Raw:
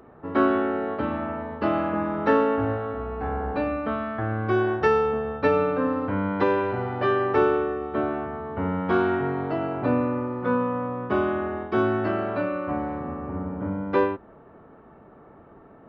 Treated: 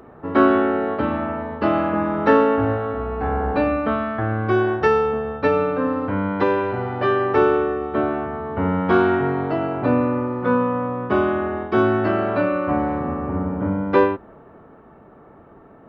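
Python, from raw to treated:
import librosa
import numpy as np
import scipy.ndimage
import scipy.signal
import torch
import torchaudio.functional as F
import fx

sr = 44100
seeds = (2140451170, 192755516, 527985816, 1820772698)

y = fx.rider(x, sr, range_db=10, speed_s=2.0)
y = y * 10.0 ** (4.0 / 20.0)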